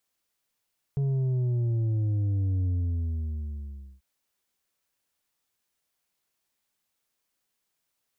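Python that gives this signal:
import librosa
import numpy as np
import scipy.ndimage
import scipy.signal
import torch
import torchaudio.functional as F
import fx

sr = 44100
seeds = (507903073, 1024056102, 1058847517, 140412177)

y = fx.sub_drop(sr, level_db=-24.0, start_hz=140.0, length_s=3.04, drive_db=5.5, fade_s=1.35, end_hz=65.0)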